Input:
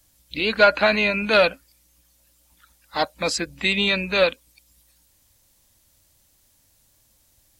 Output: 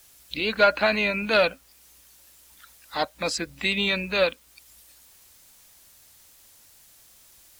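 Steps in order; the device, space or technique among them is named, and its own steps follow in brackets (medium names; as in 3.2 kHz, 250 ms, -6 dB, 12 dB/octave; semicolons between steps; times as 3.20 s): noise-reduction cassette on a plain deck (tape noise reduction on one side only encoder only; wow and flutter 20 cents; white noise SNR 31 dB); trim -3.5 dB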